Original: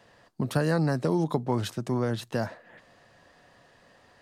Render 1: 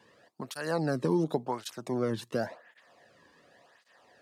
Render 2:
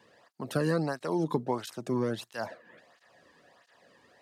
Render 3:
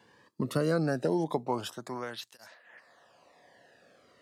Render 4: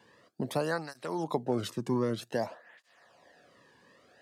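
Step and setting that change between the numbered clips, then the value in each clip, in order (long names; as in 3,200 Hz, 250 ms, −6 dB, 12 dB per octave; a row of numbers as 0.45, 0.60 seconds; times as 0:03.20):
through-zero flanger with one copy inverted, nulls at: 0.91, 1.5, 0.21, 0.53 Hertz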